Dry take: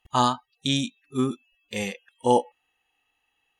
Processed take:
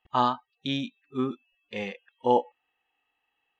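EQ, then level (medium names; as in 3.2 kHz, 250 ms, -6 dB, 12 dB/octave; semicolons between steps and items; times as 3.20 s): distance through air 290 m; bass shelf 180 Hz -11 dB; 0.0 dB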